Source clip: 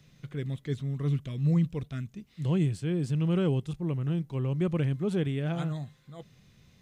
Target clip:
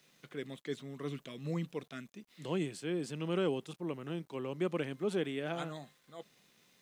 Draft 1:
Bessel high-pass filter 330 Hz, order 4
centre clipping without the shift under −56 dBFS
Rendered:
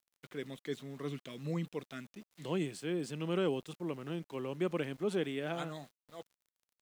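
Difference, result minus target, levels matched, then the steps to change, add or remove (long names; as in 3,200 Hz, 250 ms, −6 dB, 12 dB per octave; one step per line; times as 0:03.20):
centre clipping without the shift: distortion +11 dB
change: centre clipping without the shift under −66 dBFS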